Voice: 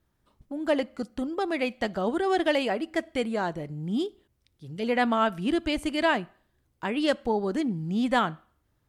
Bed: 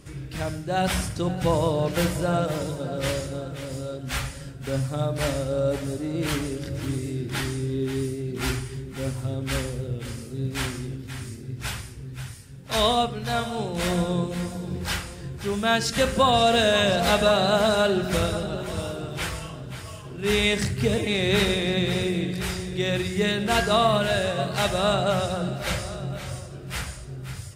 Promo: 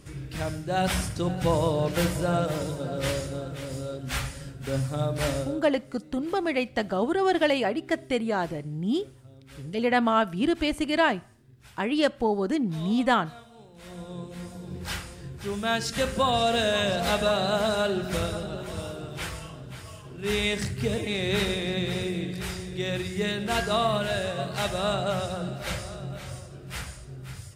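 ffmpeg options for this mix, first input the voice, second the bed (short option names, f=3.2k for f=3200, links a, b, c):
-filter_complex "[0:a]adelay=4950,volume=1.5dB[a];[1:a]volume=15.5dB,afade=t=out:st=5.39:d=0.23:silence=0.1,afade=t=in:st=13.82:d=1.2:silence=0.141254[b];[a][b]amix=inputs=2:normalize=0"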